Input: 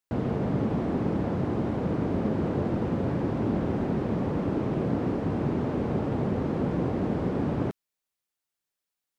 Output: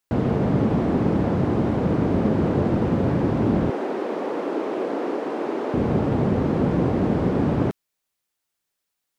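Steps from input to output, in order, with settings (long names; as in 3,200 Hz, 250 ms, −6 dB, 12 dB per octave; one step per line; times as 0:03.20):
0:03.70–0:05.74: high-pass filter 330 Hz 24 dB per octave
level +6.5 dB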